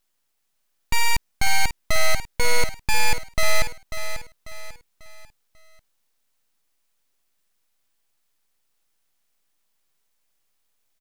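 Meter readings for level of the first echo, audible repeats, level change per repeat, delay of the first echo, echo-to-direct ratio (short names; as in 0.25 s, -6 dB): -10.0 dB, 4, -8.0 dB, 0.543 s, -9.5 dB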